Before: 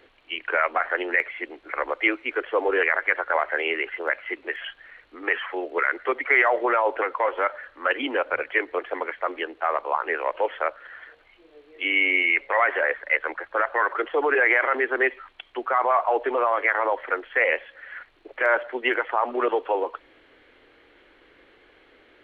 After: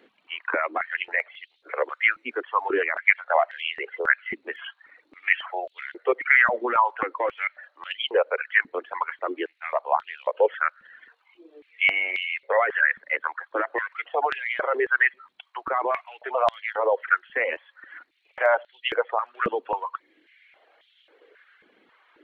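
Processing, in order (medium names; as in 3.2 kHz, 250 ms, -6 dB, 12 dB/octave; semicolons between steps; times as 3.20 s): reverb removal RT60 0.84 s; step-sequenced high-pass 3.7 Hz 210–3300 Hz; trim -4 dB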